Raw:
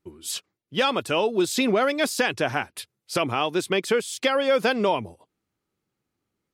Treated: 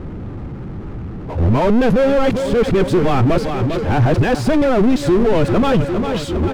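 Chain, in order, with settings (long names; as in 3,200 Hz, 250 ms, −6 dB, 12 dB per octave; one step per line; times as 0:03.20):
played backwards from end to start
on a send: repeating echo 401 ms, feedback 51%, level −17 dB
on the sum: low-pass that shuts in the quiet parts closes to 2,000 Hz, open at −23 dBFS
high-shelf EQ 2,000 Hz −9.5 dB
power curve on the samples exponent 0.35
RIAA equalisation playback
boost into a limiter +6 dB
level −5.5 dB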